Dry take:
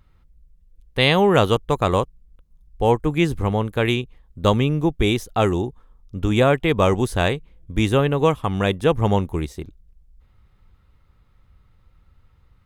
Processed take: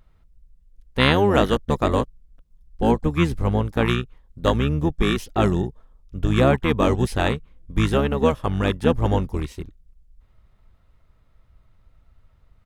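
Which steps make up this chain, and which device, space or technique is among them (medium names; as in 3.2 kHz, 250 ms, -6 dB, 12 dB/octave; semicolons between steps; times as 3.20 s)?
octave pedal (harmony voices -12 st -2 dB); trim -3 dB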